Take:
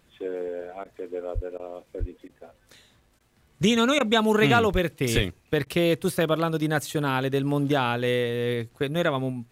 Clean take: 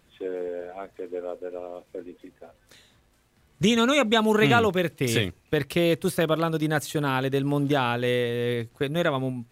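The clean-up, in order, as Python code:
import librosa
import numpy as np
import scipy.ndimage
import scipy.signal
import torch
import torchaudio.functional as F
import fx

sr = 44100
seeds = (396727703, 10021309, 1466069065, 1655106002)

y = fx.fix_declip(x, sr, threshold_db=-8.0)
y = fx.fix_deplosive(y, sr, at_s=(1.34, 1.99, 4.72, 5.15))
y = fx.fix_interpolate(y, sr, at_s=(0.84, 1.58, 2.28, 3.19, 3.99, 5.65), length_ms=13.0)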